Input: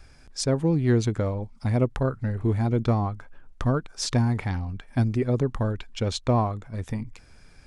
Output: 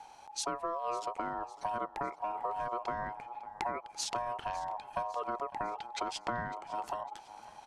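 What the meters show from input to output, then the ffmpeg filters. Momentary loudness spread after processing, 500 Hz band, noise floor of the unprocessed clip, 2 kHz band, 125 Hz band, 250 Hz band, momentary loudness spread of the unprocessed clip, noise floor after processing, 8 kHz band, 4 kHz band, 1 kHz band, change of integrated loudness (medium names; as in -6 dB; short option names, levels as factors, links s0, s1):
5 LU, -11.5 dB, -52 dBFS, -5.0 dB, -30.5 dB, -22.0 dB, 10 LU, -55 dBFS, -6.0 dB, -7.5 dB, +0.5 dB, -11.5 dB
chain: -af "aeval=exprs='val(0)*sin(2*PI*840*n/s)':c=same,acompressor=threshold=0.0224:ratio=6,aecho=1:1:553|1106|1659|2212:0.112|0.055|0.0269|0.0132"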